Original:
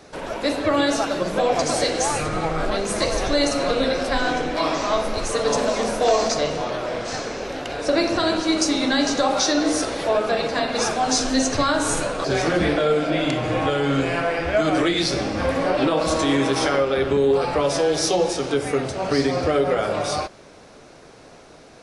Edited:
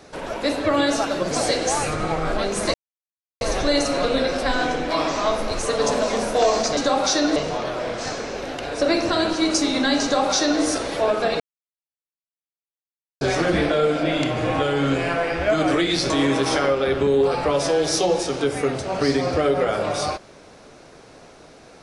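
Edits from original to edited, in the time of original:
0:01.31–0:01.64: remove
0:03.07: splice in silence 0.67 s
0:09.10–0:09.69: duplicate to 0:06.43
0:10.47–0:12.28: silence
0:15.17–0:16.20: remove

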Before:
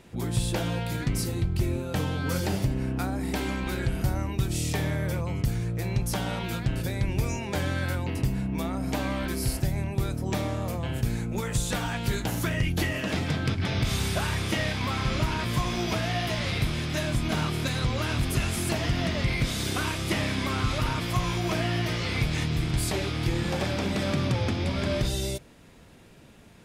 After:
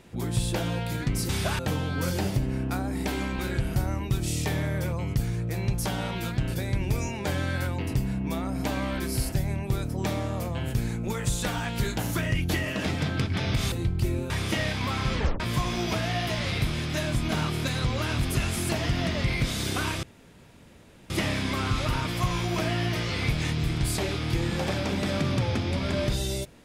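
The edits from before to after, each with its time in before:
0:01.29–0:01.87: swap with 0:14.00–0:14.30
0:15.14: tape stop 0.26 s
0:20.03: splice in room tone 1.07 s

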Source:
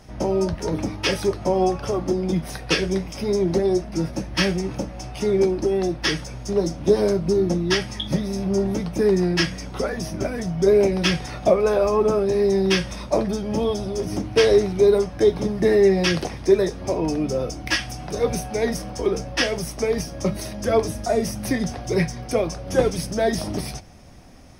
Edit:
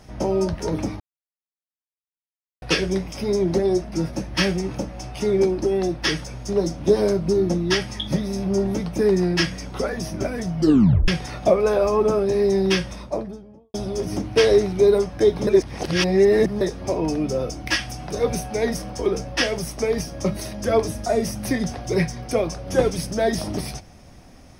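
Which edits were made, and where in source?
0:01.00–0:02.62: silence
0:10.58: tape stop 0.50 s
0:12.62–0:13.74: fade out and dull
0:15.47–0:16.61: reverse

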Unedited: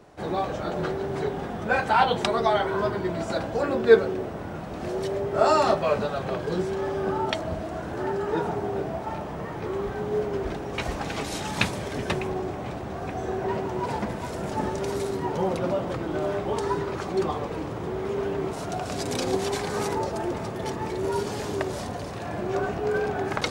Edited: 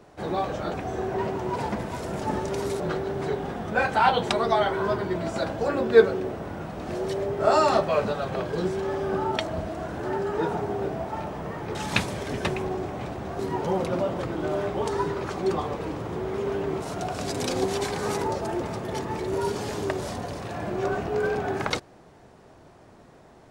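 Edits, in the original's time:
0:09.69–0:11.40: remove
0:13.04–0:15.10: move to 0:00.74

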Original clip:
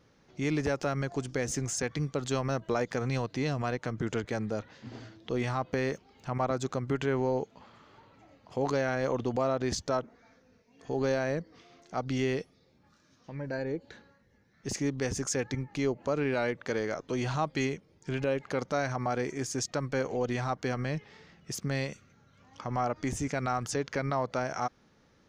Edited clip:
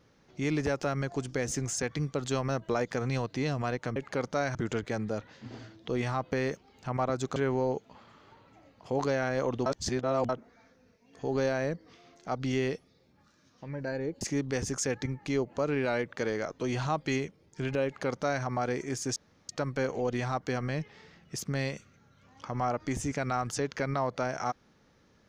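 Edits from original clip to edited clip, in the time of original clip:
0:06.77–0:07.02: remove
0:09.32–0:09.95: reverse
0:13.87–0:14.70: remove
0:18.34–0:18.93: duplicate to 0:03.96
0:19.65: splice in room tone 0.33 s

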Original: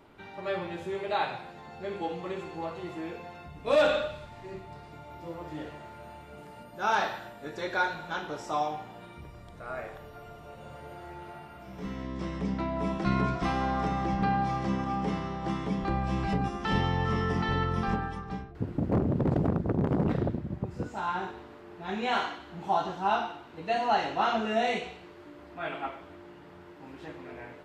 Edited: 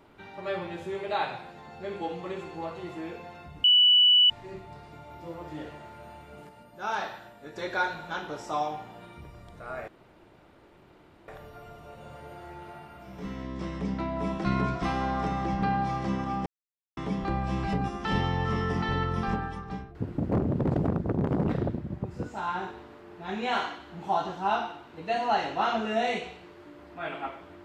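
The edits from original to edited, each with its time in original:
0:03.64–0:04.30: beep over 2,960 Hz −15.5 dBFS
0:06.49–0:07.56: clip gain −4.5 dB
0:09.88: splice in room tone 1.40 s
0:15.06–0:15.57: silence

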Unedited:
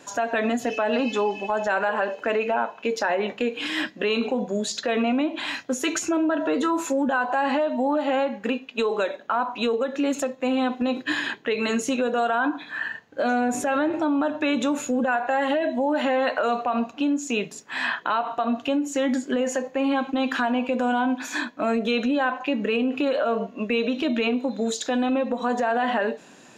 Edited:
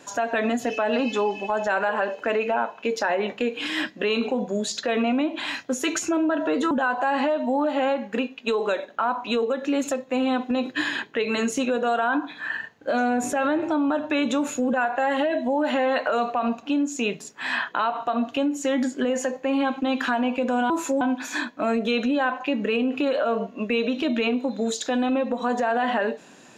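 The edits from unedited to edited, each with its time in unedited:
0:06.71–0:07.02: move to 0:21.01

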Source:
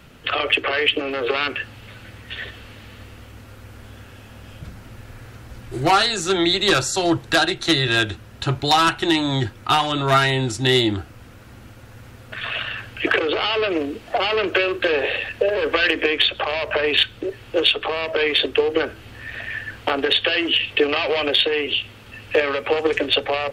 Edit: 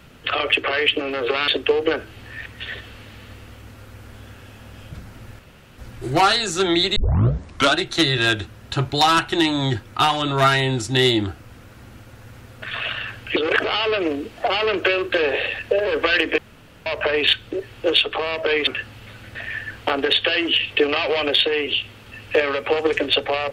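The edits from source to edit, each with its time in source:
0:01.48–0:02.16: swap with 0:18.37–0:19.35
0:05.09–0:05.48: fill with room tone
0:06.66: tape start 0.81 s
0:13.06–0:13.34: reverse
0:16.08–0:16.56: fill with room tone

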